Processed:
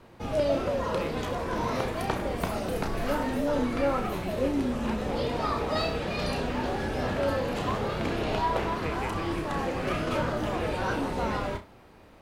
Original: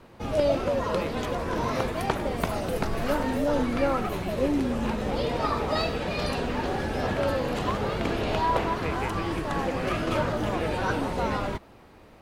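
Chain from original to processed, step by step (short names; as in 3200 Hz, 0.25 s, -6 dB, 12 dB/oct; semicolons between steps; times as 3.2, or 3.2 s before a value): in parallel at -10 dB: hard clip -24 dBFS, distortion -12 dB; on the sum: flutter echo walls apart 5.5 m, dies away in 0.24 s; gain -4.5 dB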